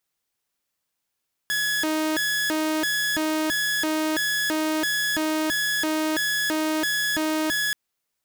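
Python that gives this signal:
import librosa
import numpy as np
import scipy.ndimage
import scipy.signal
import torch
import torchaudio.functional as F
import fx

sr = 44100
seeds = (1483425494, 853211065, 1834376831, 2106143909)

y = fx.siren(sr, length_s=6.23, kind='hi-lo', low_hz=312.0, high_hz=1690.0, per_s=1.5, wave='saw', level_db=-19.5)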